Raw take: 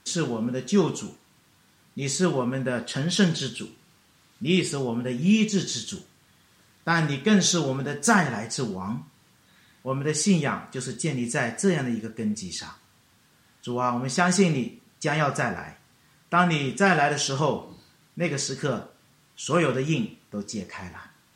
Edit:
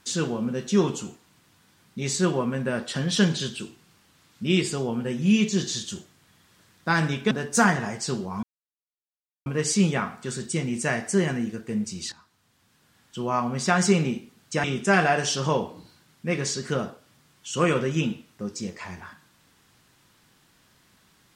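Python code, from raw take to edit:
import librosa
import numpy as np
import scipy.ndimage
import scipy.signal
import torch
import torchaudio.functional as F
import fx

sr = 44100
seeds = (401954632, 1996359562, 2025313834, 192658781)

y = fx.edit(x, sr, fx.cut(start_s=7.31, length_s=0.5),
    fx.silence(start_s=8.93, length_s=1.03),
    fx.fade_in_from(start_s=12.62, length_s=1.4, curve='qsin', floor_db=-16.5),
    fx.cut(start_s=15.14, length_s=1.43), tone=tone)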